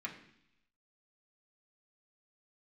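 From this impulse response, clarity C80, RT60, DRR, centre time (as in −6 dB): 12.0 dB, 0.70 s, −3.0 dB, 18 ms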